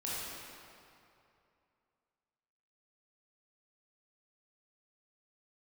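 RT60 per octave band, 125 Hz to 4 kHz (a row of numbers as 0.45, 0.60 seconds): 2.7, 2.5, 2.7, 2.7, 2.3, 1.8 seconds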